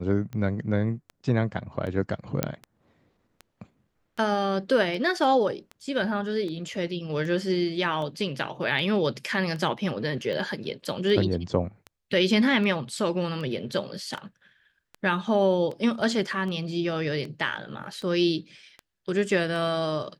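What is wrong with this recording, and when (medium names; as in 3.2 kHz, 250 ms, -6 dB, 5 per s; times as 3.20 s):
tick 78 rpm -25 dBFS
2.43 s: pop -8 dBFS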